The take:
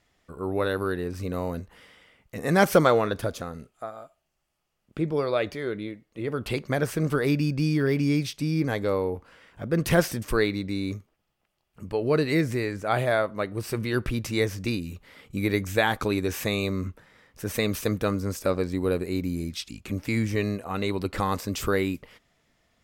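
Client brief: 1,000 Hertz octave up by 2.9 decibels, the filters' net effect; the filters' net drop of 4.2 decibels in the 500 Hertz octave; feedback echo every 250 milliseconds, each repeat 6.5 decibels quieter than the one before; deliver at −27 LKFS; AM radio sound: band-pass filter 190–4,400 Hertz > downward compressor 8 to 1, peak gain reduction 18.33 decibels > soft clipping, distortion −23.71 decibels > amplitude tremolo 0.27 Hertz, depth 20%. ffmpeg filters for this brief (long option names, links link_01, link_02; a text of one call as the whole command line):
ffmpeg -i in.wav -af "highpass=190,lowpass=4400,equalizer=frequency=500:width_type=o:gain=-6.5,equalizer=frequency=1000:width_type=o:gain=6,aecho=1:1:250|500|750|1000|1250|1500:0.473|0.222|0.105|0.0491|0.0231|0.0109,acompressor=threshold=-32dB:ratio=8,asoftclip=threshold=-23dB,tremolo=f=0.27:d=0.2,volume=11.5dB" out.wav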